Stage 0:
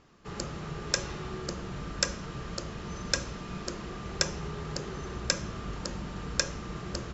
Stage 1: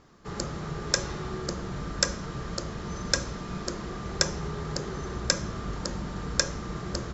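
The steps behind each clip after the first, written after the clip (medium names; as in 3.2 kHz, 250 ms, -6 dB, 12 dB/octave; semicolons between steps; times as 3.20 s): peaking EQ 2.7 kHz -6.5 dB 0.47 oct; trim +3.5 dB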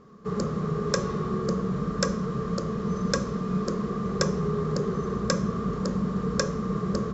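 small resonant body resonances 200/430/1100 Hz, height 18 dB, ringing for 35 ms; trim -6 dB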